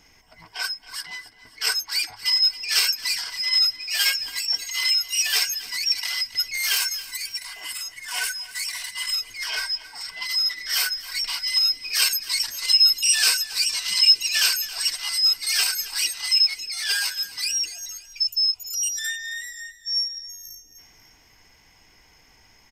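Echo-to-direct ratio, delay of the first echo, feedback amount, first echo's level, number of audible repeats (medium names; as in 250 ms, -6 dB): -15.5 dB, 273 ms, 47%, -16.5 dB, 3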